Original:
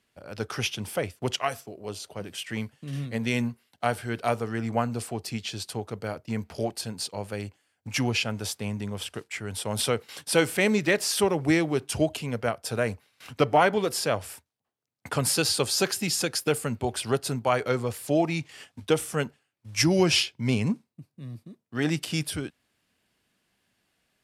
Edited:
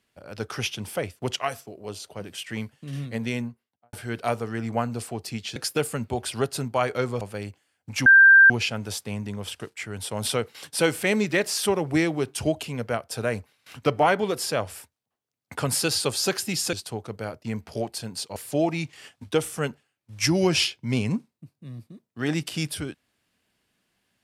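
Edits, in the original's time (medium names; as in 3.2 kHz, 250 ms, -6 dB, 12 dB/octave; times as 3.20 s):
3.12–3.93 s: studio fade out
5.56–7.19 s: swap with 16.27–17.92 s
8.04 s: add tone 1.58 kHz -9 dBFS 0.44 s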